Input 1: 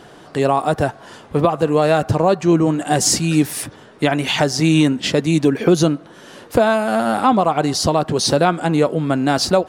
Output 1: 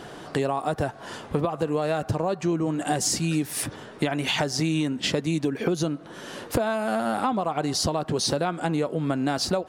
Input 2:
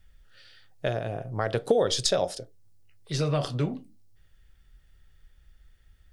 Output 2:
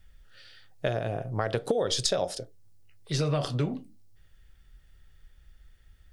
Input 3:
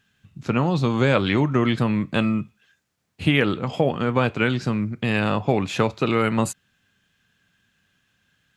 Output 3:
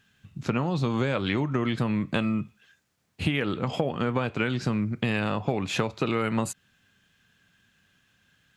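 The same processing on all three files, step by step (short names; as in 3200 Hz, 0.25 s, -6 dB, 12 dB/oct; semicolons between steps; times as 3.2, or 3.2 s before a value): compressor 6:1, threshold -24 dBFS; gain +1.5 dB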